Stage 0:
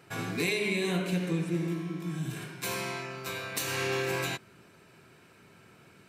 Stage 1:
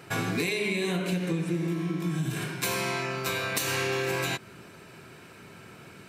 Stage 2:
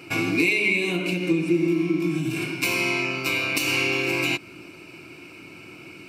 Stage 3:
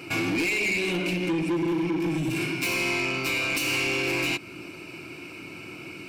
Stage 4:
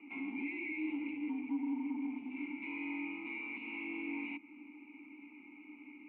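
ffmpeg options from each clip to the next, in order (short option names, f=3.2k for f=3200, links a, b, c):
-af "acompressor=threshold=-34dB:ratio=6,volume=8.5dB"
-af "superequalizer=6b=3.55:11b=0.562:12b=3.55:14b=1.78"
-filter_complex "[0:a]asplit=2[a][b];[b]alimiter=limit=-18dB:level=0:latency=1:release=332,volume=-2.5dB[c];[a][c]amix=inputs=2:normalize=0,asoftclip=type=tanh:threshold=-20dB,volume=-2dB"
-filter_complex "[0:a]aeval=exprs='0.0794*(cos(1*acos(clip(val(0)/0.0794,-1,1)))-cos(1*PI/2))+0.00708*(cos(4*acos(clip(val(0)/0.0794,-1,1)))-cos(4*PI/2))':c=same,highpass=f=300:t=q:w=0.5412,highpass=f=300:t=q:w=1.307,lowpass=f=3k:t=q:w=0.5176,lowpass=f=3k:t=q:w=0.7071,lowpass=f=3k:t=q:w=1.932,afreqshift=-65,asplit=3[a][b][c];[a]bandpass=f=300:t=q:w=8,volume=0dB[d];[b]bandpass=f=870:t=q:w=8,volume=-6dB[e];[c]bandpass=f=2.24k:t=q:w=8,volume=-9dB[f];[d][e][f]amix=inputs=3:normalize=0,volume=-4.5dB"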